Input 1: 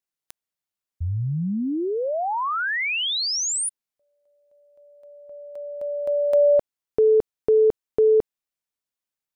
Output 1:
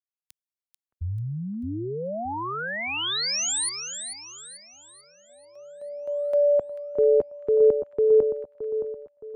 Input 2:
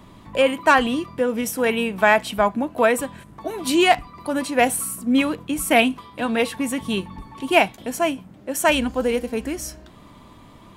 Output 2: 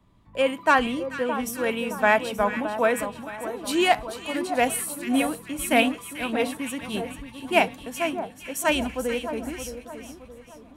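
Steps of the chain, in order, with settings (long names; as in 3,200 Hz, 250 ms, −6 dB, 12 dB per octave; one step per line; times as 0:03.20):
echo with a time of its own for lows and highs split 1,400 Hz, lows 619 ms, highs 440 ms, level −7.5 dB
multiband upward and downward expander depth 40%
level −5.5 dB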